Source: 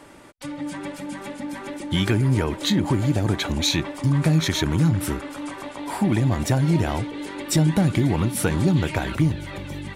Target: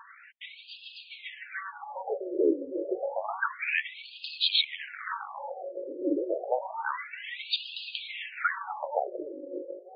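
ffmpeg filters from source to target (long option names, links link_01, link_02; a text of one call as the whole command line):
ffmpeg -i in.wav -af "afreqshift=-29,aphaser=in_gain=1:out_gain=1:delay=2.5:decay=0.3:speed=1.2:type=triangular,afftfilt=real='re*between(b*sr/1024,410*pow(3600/410,0.5+0.5*sin(2*PI*0.29*pts/sr))/1.41,410*pow(3600/410,0.5+0.5*sin(2*PI*0.29*pts/sr))*1.41)':imag='im*between(b*sr/1024,410*pow(3600/410,0.5+0.5*sin(2*PI*0.29*pts/sr))/1.41,410*pow(3600/410,0.5+0.5*sin(2*PI*0.29*pts/sr))*1.41)':win_size=1024:overlap=0.75,volume=3.5dB" out.wav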